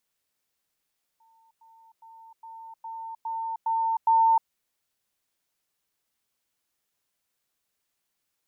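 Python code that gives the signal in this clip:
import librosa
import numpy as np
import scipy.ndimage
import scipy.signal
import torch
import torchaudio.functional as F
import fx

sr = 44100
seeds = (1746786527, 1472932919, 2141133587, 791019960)

y = fx.level_ladder(sr, hz=903.0, from_db=-58.5, step_db=6.0, steps=8, dwell_s=0.31, gap_s=0.1)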